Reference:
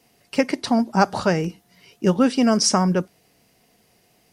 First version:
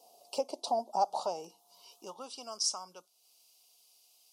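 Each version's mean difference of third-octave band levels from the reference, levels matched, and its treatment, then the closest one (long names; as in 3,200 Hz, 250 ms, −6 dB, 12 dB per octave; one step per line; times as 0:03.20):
9.0 dB: downward compressor 2 to 1, threshold −37 dBFS, peak gain reduction 14 dB
Butterworth band-reject 1,800 Hz, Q 0.62
low-shelf EQ 190 Hz +3.5 dB
high-pass filter sweep 680 Hz → 1,800 Hz, 0:00.81–0:03.41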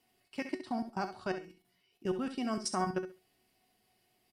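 5.0 dB: thirty-one-band graphic EQ 160 Hz −7 dB, 500 Hz −7 dB, 3,150 Hz +3 dB, 6,300 Hz −7 dB
output level in coarse steps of 21 dB
tuned comb filter 370 Hz, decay 0.29 s, harmonics all, mix 80%
on a send: repeating echo 67 ms, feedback 20%, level −10.5 dB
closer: second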